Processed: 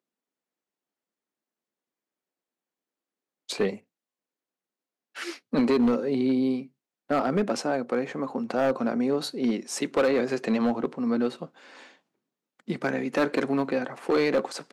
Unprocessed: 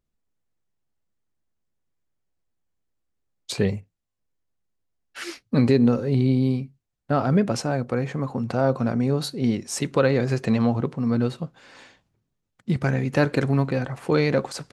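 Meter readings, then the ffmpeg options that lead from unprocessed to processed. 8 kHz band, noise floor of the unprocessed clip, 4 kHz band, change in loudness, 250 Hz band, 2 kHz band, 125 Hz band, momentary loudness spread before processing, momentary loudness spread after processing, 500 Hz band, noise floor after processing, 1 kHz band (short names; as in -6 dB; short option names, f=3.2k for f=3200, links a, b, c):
-3.5 dB, -79 dBFS, -2.0 dB, -3.5 dB, -3.0 dB, -1.5 dB, -17.0 dB, 9 LU, 12 LU, -1.5 dB, under -85 dBFS, -1.0 dB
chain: -filter_complex "[0:a]highpass=f=230:w=0.5412,highpass=f=230:w=1.3066,highshelf=f=4.8k:g=-5,acrossover=split=3300[a][b];[a]volume=17.5dB,asoftclip=hard,volume=-17.5dB[c];[c][b]amix=inputs=2:normalize=0"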